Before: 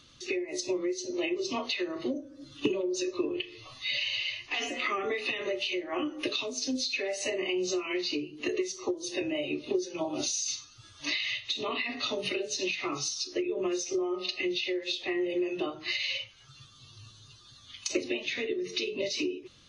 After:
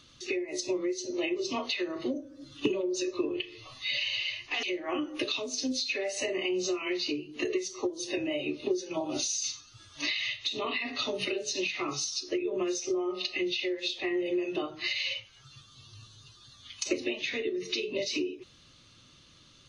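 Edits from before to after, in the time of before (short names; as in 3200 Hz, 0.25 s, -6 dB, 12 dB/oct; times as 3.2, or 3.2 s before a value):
4.63–5.67 cut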